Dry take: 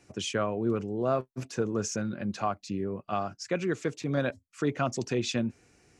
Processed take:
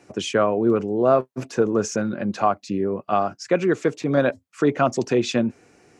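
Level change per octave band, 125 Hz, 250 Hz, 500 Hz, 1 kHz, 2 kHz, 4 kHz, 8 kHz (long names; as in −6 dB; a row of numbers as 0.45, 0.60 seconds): +4.0, +8.5, +10.5, +10.0, +7.5, +4.5, +3.5 decibels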